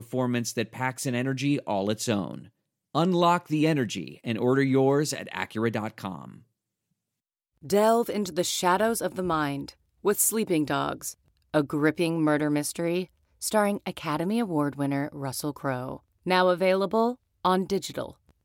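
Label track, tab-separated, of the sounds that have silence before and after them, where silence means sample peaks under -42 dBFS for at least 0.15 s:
2.940000	6.380000	sound
7.630000	9.710000	sound
10.040000	11.120000	sound
11.540000	13.050000	sound
13.410000	15.970000	sound
16.260000	17.140000	sound
17.450000	18.110000	sound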